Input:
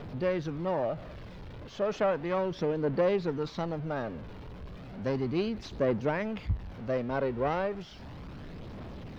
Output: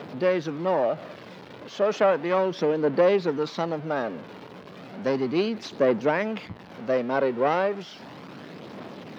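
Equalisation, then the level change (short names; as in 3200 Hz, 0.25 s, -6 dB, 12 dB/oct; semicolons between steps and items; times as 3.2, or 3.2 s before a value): Bessel high-pass 240 Hz, order 4; +7.5 dB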